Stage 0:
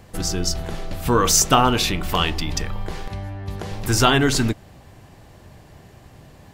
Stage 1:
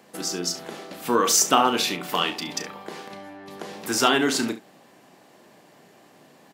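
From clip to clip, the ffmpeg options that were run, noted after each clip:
-filter_complex "[0:a]highpass=f=210:w=0.5412,highpass=f=210:w=1.3066,asplit=2[s0][s1];[s1]aecho=0:1:34|69:0.299|0.178[s2];[s0][s2]amix=inputs=2:normalize=0,volume=0.708"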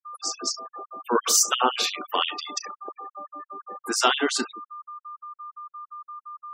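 -af "aeval=exprs='val(0)+0.0178*sin(2*PI*1200*n/s)':c=same,afftfilt=real='re*gte(hypot(re,im),0.0316)':imag='im*gte(hypot(re,im),0.0316)':win_size=1024:overlap=0.75,afftfilt=real='re*gte(b*sr/1024,200*pow(2900/200,0.5+0.5*sin(2*PI*5.8*pts/sr)))':imag='im*gte(b*sr/1024,200*pow(2900/200,0.5+0.5*sin(2*PI*5.8*pts/sr)))':win_size=1024:overlap=0.75"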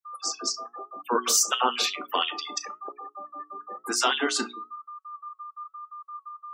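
-filter_complex "[0:a]bandreject=f=60:t=h:w=6,bandreject=f=120:t=h:w=6,bandreject=f=180:t=h:w=6,bandreject=f=240:t=h:w=6,bandreject=f=300:t=h:w=6,bandreject=f=360:t=h:w=6,bandreject=f=420:t=h:w=6,asplit=2[s0][s1];[s1]alimiter=limit=0.266:level=0:latency=1:release=161,volume=1.06[s2];[s0][s2]amix=inputs=2:normalize=0,flanger=delay=7:depth=2.4:regen=74:speed=1:shape=sinusoidal,volume=0.75"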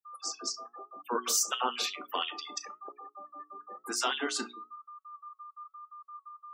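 -af "highshelf=f=12000:g=4.5,volume=0.447"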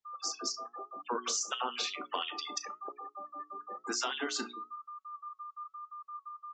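-af "aresample=16000,aresample=44100,acompressor=threshold=0.02:ratio=4,volume=1.33"

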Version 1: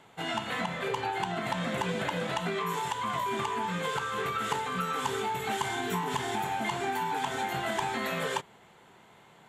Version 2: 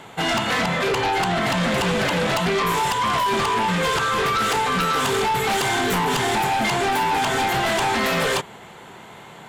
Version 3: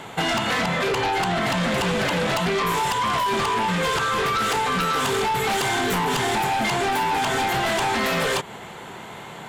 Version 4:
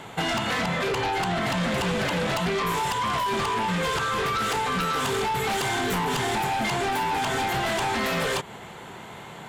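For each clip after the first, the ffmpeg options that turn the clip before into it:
-af "aeval=exprs='0.133*sin(PI/2*3.55*val(0)/0.133)':c=same"
-af "acompressor=threshold=0.0562:ratio=6,volume=1.58"
-af "equalizer=f=70:t=o:w=2.3:g=3.5,volume=0.668"

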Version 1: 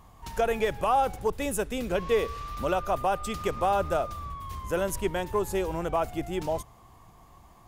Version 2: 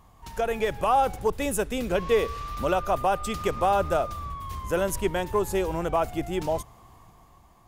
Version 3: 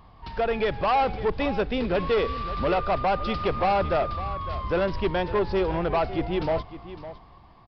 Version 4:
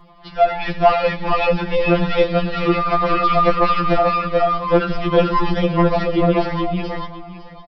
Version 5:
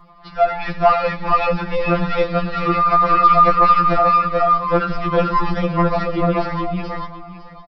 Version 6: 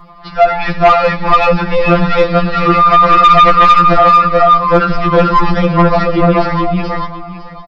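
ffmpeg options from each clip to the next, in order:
-af "dynaudnorm=f=100:g=13:m=1.68,volume=0.794"
-af "aresample=11025,asoftclip=type=tanh:threshold=0.0794,aresample=44100,aecho=1:1:557:0.2,volume=1.58"
-af "aecho=1:1:83|431|441:0.2|0.596|0.668,afftfilt=real='re*2.83*eq(mod(b,8),0)':imag='im*2.83*eq(mod(b,8),0)':win_size=2048:overlap=0.75,volume=2.51"
-af "equalizer=f=400:t=o:w=0.33:g=-10,equalizer=f=1250:t=o:w=0.33:g=8,equalizer=f=3150:t=o:w=0.33:g=-7,volume=0.891"
-af "aeval=exprs='0.841*sin(PI/2*1.78*val(0)/0.841)':c=same"

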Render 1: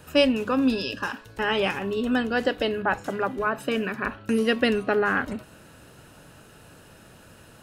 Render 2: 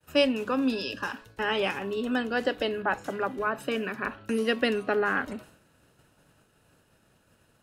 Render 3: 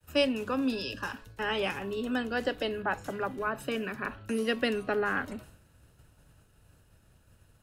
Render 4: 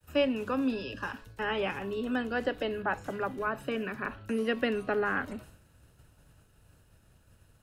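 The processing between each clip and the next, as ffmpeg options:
-filter_complex "[0:a]agate=range=0.0224:threshold=0.00891:ratio=3:detection=peak,acrossover=split=190|590|3000[s0][s1][s2][s3];[s0]acompressor=threshold=0.00562:ratio=6[s4];[s4][s1][s2][s3]amix=inputs=4:normalize=0,volume=0.708"
-filter_complex "[0:a]highshelf=f=7300:g=5.5,acrossover=split=100|670|2200[s0][s1][s2][s3];[s0]aeval=exprs='0.00631*sin(PI/2*3.98*val(0)/0.00631)':c=same[s4];[s4][s1][s2][s3]amix=inputs=4:normalize=0,volume=0.668"
-filter_complex "[0:a]acrossover=split=3000[s0][s1];[s1]acompressor=threshold=0.002:ratio=4:attack=1:release=60[s2];[s0][s2]amix=inputs=2:normalize=0"

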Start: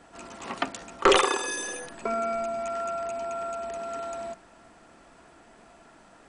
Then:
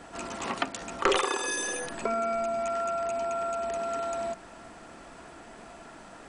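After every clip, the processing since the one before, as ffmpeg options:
-af "acompressor=threshold=0.0126:ratio=2,volume=2.11"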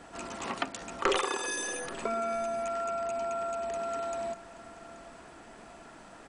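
-af "aecho=1:1:830:0.119,volume=0.708"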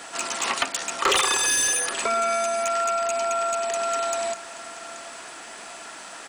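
-filter_complex "[0:a]crystalizer=i=5.5:c=0,asplit=2[s0][s1];[s1]highpass=f=720:p=1,volume=12.6,asoftclip=type=tanh:threshold=0.891[s2];[s0][s2]amix=inputs=2:normalize=0,lowpass=f=4200:p=1,volume=0.501,volume=0.447"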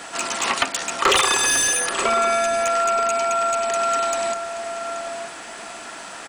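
-filter_complex "[0:a]bass=f=250:g=3,treble=f=4000:g=-2,asplit=2[s0][s1];[s1]adelay=932.9,volume=0.398,highshelf=f=4000:g=-21[s2];[s0][s2]amix=inputs=2:normalize=0,volume=1.58"

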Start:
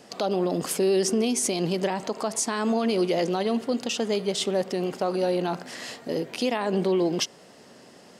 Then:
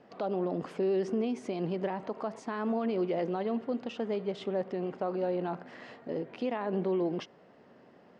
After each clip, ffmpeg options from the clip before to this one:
-af "lowpass=1900,volume=0.473"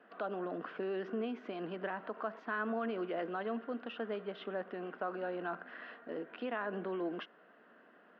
-af "highpass=f=260:w=0.5412,highpass=f=260:w=1.3066,equalizer=f=270:t=q:w=4:g=-6,equalizer=f=380:t=q:w=4:g=-9,equalizer=f=540:t=q:w=4:g=-8,equalizer=f=850:t=q:w=4:g=-10,equalizer=f=1500:t=q:w=4:g=8,equalizer=f=2200:t=q:w=4:g=-7,lowpass=f=3000:w=0.5412,lowpass=f=3000:w=1.3066,volume=1.19"

